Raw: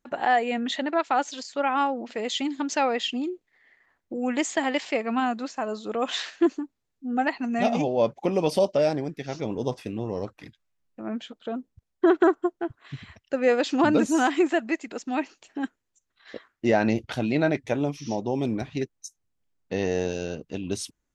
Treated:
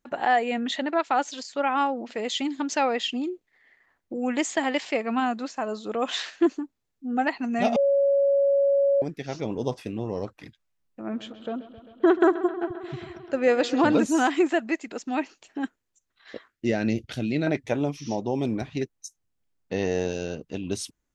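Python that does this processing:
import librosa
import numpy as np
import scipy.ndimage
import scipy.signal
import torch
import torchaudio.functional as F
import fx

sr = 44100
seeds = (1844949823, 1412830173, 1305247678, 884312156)

y = fx.echo_bbd(x, sr, ms=132, stages=4096, feedback_pct=77, wet_db=-15, at=(11.09, 13.96), fade=0.02)
y = fx.peak_eq(y, sr, hz=930.0, db=-14.5, octaves=1.2, at=(16.5, 17.47))
y = fx.edit(y, sr, fx.bleep(start_s=7.76, length_s=1.26, hz=558.0, db=-17.5), tone=tone)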